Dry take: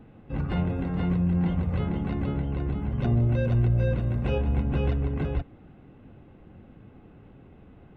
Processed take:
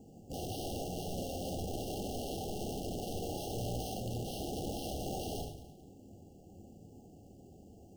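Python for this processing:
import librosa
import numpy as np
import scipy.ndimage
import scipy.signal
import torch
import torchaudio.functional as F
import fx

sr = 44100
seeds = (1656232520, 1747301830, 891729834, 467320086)

y = fx.low_shelf(x, sr, hz=89.0, db=-10.0)
y = fx.hum_notches(y, sr, base_hz=60, count=5)
y = fx.rider(y, sr, range_db=4, speed_s=0.5)
y = (np.mod(10.0 ** (27.5 / 20.0) * y + 1.0, 2.0) - 1.0) / 10.0 ** (27.5 / 20.0)
y = fx.air_absorb(y, sr, metres=130.0)
y = fx.echo_feedback(y, sr, ms=218, feedback_pct=26, wet_db=-15.5)
y = fx.rev_gated(y, sr, seeds[0], gate_ms=150, shape='flat', drr_db=2.5)
y = np.repeat(scipy.signal.resample_poly(y, 1, 6), 6)[:len(y)]
y = fx.brickwall_bandstop(y, sr, low_hz=840.0, high_hz=2700.0)
y = y * librosa.db_to_amplitude(-6.0)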